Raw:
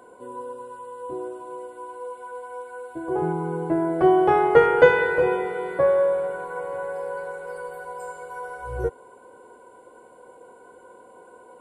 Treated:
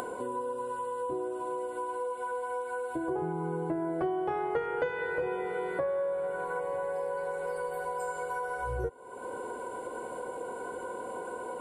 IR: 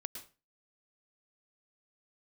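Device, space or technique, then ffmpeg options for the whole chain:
upward and downward compression: -filter_complex "[0:a]asettb=1/sr,asplit=3[a][b][c];[a]atrim=end=6.594[d];[b]atrim=start=6.59:end=7.93,asetpts=PTS-STARTPTS,afade=t=in:d=0.004:c=qsin,afade=t=out:st=1.336:d=0.004:c=qsin,bandreject=f=1.4k:w=7.4[e];[c]atrim=start=7.926[f];[d][e]acrossfade=d=0.004:c1=hsin:c2=qsin[g];[g][f]acrossfade=d=0.004:c1=qsin:c2=hsin,acompressor=mode=upward:threshold=-34dB:ratio=2.5,acompressor=threshold=-35dB:ratio=5,volume=4dB"

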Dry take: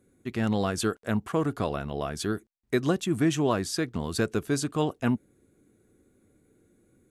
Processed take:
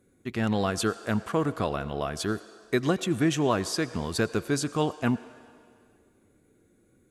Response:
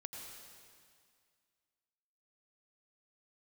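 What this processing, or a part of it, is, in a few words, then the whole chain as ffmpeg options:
filtered reverb send: -filter_complex "[0:a]asplit=2[a][b];[b]highpass=420,lowpass=8.1k[c];[1:a]atrim=start_sample=2205[d];[c][d]afir=irnorm=-1:irlink=0,volume=-7dB[e];[a][e]amix=inputs=2:normalize=0"

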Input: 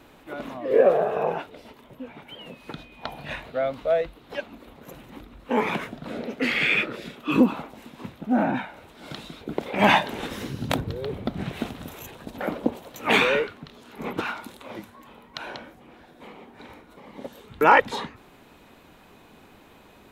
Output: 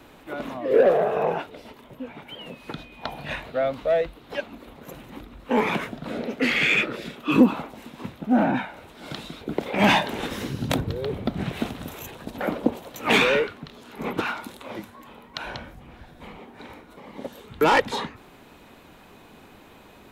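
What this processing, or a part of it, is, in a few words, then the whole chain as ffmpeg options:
one-band saturation: -filter_complex "[0:a]asplit=3[a][b][c];[a]afade=t=out:st=15.41:d=0.02[d];[b]asubboost=boost=5:cutoff=130,afade=t=in:st=15.41:d=0.02,afade=t=out:st=16.38:d=0.02[e];[c]afade=t=in:st=16.38:d=0.02[f];[d][e][f]amix=inputs=3:normalize=0,acrossover=split=440|2900[g][h][i];[h]asoftclip=type=tanh:threshold=-19.5dB[j];[g][j][i]amix=inputs=3:normalize=0,volume=2.5dB"

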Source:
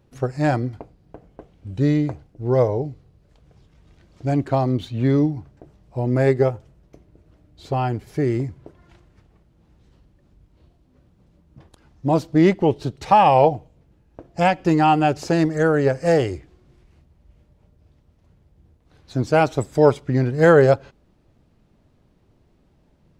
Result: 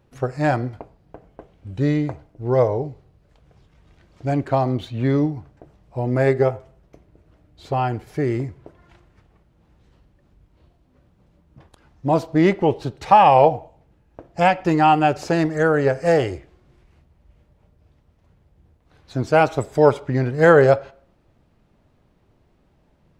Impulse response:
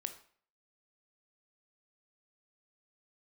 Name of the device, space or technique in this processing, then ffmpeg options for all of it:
filtered reverb send: -filter_complex "[0:a]asplit=2[a][b];[b]highpass=440,lowpass=3.5k[c];[1:a]atrim=start_sample=2205[d];[c][d]afir=irnorm=-1:irlink=0,volume=-4dB[e];[a][e]amix=inputs=2:normalize=0,volume=-1dB"

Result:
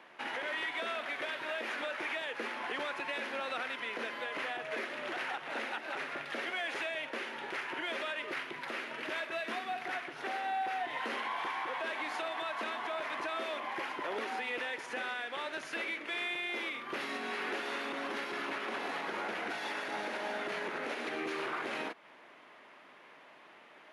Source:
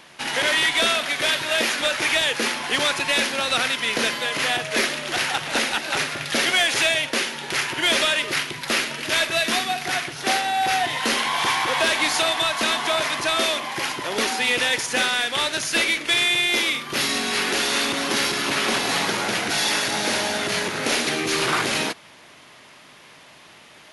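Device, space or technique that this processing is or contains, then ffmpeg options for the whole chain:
DJ mixer with the lows and highs turned down: -filter_complex "[0:a]acrossover=split=230 2600:gain=0.0794 1 0.112[a][b][c];[a][b][c]amix=inputs=3:normalize=0,alimiter=limit=-22dB:level=0:latency=1:release=210,volume=-6dB"

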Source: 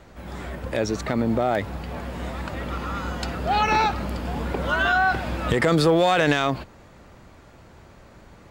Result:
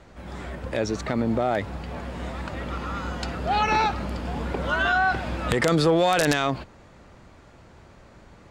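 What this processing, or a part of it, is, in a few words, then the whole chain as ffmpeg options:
overflowing digital effects unit: -af "aeval=exprs='(mod(2.37*val(0)+1,2)-1)/2.37':c=same,lowpass=9.7k,volume=-1.5dB"

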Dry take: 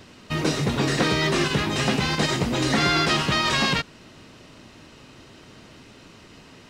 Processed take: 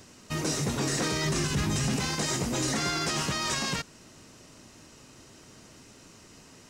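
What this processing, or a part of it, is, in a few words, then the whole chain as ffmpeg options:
over-bright horn tweeter: -filter_complex "[0:a]asplit=3[a][b][c];[a]afade=t=out:st=1.24:d=0.02[d];[b]asubboost=boost=5:cutoff=240,afade=t=in:st=1.24:d=0.02,afade=t=out:st=1.96:d=0.02[e];[c]afade=t=in:st=1.96:d=0.02[f];[d][e][f]amix=inputs=3:normalize=0,highshelf=f=4.9k:t=q:w=1.5:g=8.5,alimiter=limit=-14dB:level=0:latency=1:release=10,volume=-5.5dB"

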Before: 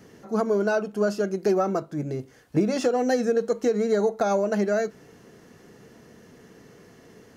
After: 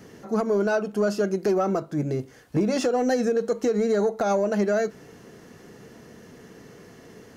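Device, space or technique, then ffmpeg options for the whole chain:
soft clipper into limiter: -af "asoftclip=type=tanh:threshold=-12dB,alimiter=limit=-19dB:level=0:latency=1:release=134,volume=3.5dB"

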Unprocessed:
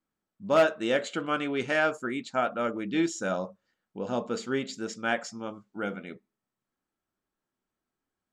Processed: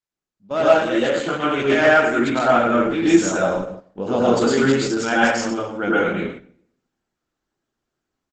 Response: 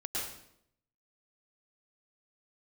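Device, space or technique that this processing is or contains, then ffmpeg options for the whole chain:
speakerphone in a meeting room: -filter_complex "[0:a]asettb=1/sr,asplit=3[a][b][c];[a]atrim=end=2.134[d];[b]atrim=start=2.13:end=4.07,asetpts=PTS-STARTPTS,afade=t=in:d=0.004:c=qsin,afade=t=out:st=1.936:d=0.004:c=qsin,lowshelf=f=87:g=4.5[e];[c]atrim=start=4.066[f];[d][e]acrossfade=d=0.004:c1=hsin:c2=qsin[g];[g][f]acrossfade=d=0.004:c1=qsin:c2=hsin[h];[1:a]atrim=start_sample=2205[i];[h][i]afir=irnorm=-1:irlink=0,asplit=2[j][k];[k]adelay=130,highpass=300,lowpass=3.4k,asoftclip=type=hard:threshold=-15dB,volume=-26dB[l];[j][l]amix=inputs=2:normalize=0,dynaudnorm=f=330:g=3:m=14dB,agate=range=-9dB:threshold=-32dB:ratio=16:detection=peak,volume=-1dB" -ar 48000 -c:a libopus -b:a 12k

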